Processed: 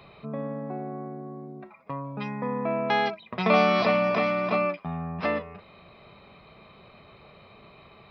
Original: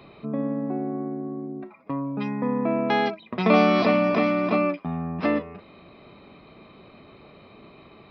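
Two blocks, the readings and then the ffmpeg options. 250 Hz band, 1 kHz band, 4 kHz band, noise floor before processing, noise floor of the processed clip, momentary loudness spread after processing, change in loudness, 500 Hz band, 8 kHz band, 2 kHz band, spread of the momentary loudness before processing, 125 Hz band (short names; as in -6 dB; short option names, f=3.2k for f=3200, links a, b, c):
-7.0 dB, -0.5 dB, 0.0 dB, -51 dBFS, -53 dBFS, 18 LU, -2.5 dB, -2.0 dB, n/a, 0.0 dB, 14 LU, -3.0 dB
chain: -af "equalizer=f=290:w=1.8:g=-12"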